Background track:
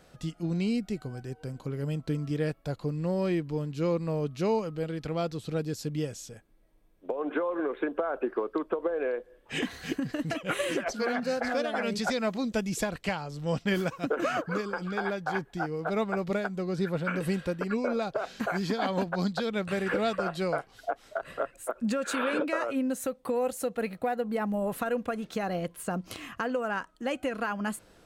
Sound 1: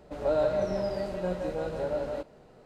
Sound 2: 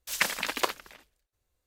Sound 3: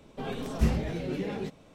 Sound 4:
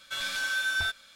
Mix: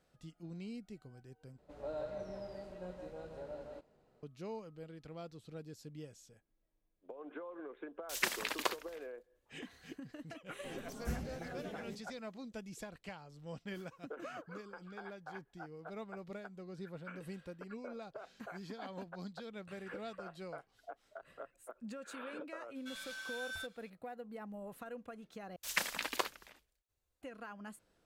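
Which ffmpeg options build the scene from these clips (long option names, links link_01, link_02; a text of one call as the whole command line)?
ffmpeg -i bed.wav -i cue0.wav -i cue1.wav -i cue2.wav -i cue3.wav -filter_complex "[2:a]asplit=2[link_01][link_02];[0:a]volume=-17dB[link_03];[3:a]aexciter=amount=3.1:drive=4.1:freq=5600[link_04];[link_03]asplit=3[link_05][link_06][link_07];[link_05]atrim=end=1.584[link_08];[1:a]atrim=end=2.65,asetpts=PTS-STARTPTS,volume=-15.5dB[link_09];[link_06]atrim=start=4.226:end=25.564[link_10];[link_02]atrim=end=1.66,asetpts=PTS-STARTPTS,volume=-7.5dB[link_11];[link_07]atrim=start=27.216[link_12];[link_01]atrim=end=1.66,asetpts=PTS-STARTPTS,volume=-7dB,afade=type=in:duration=0.004:curve=hsin,afade=type=out:start_time=1.656:duration=0.004:curve=hsin,adelay=353682S[link_13];[link_04]atrim=end=1.74,asetpts=PTS-STARTPTS,volume=-14.5dB,afade=type=in:duration=0.004:curve=hsin,afade=type=out:start_time=1.736:duration=0.004:curve=hsin,adelay=10460[link_14];[4:a]atrim=end=1.15,asetpts=PTS-STARTPTS,volume=-15.5dB,afade=type=in:duration=0.004:curve=hsin,afade=type=out:start_time=1.146:duration=0.004:curve=hsin,adelay=22750[link_15];[link_08][link_09]acrossfade=duration=0.004:curve1=hsin:curve2=hsin[link_16];[link_16][link_10]acrossfade=duration=0.004:curve1=hsin:curve2=hsin[link_17];[link_17][link_11]acrossfade=duration=0.004:curve1=hsin:curve2=hsin[link_18];[link_18][link_12]acrossfade=duration=0.004:curve1=hsin:curve2=hsin[link_19];[link_19][link_13][link_14][link_15]amix=inputs=4:normalize=0" out.wav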